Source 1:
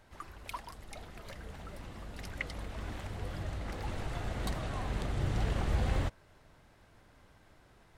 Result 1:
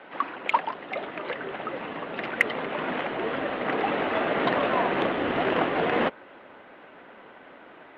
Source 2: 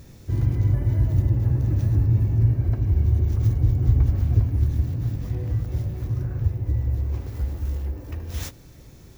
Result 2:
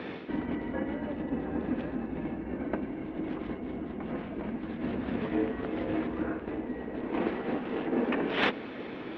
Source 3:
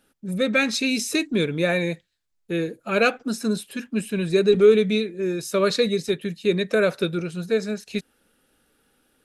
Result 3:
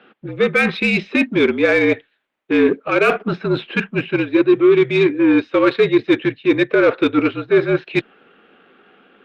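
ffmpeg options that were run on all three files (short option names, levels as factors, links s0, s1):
-af "areverse,acompressor=threshold=0.0398:ratio=20,areverse,highpass=f=300:t=q:w=0.5412,highpass=f=300:t=q:w=1.307,lowpass=f=3200:t=q:w=0.5176,lowpass=f=3200:t=q:w=0.7071,lowpass=f=3200:t=q:w=1.932,afreqshift=-53,aeval=exprs='0.0944*(cos(1*acos(clip(val(0)/0.0944,-1,1)))-cos(1*PI/2))+0.00376*(cos(7*acos(clip(val(0)/0.0944,-1,1)))-cos(7*PI/2))':c=same,alimiter=level_in=16.8:limit=0.891:release=50:level=0:latency=1,volume=0.668" -ar 48000 -c:a libopus -b:a 48k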